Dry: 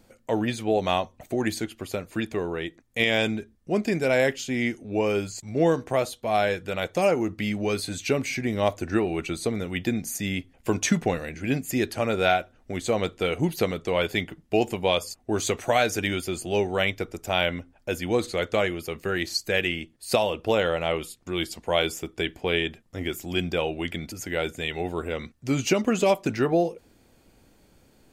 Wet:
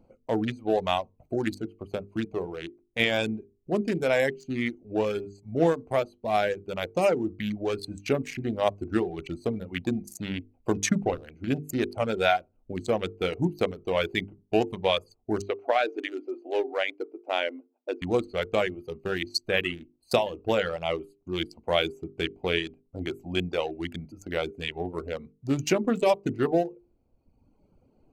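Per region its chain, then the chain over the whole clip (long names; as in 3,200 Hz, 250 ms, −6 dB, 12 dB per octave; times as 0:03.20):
0:15.42–0:18.02: linear-phase brick-wall high-pass 250 Hz + high-frequency loss of the air 220 metres
whole clip: adaptive Wiener filter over 25 samples; reverb reduction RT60 1.2 s; mains-hum notches 50/100/150/200/250/300/350/400/450 Hz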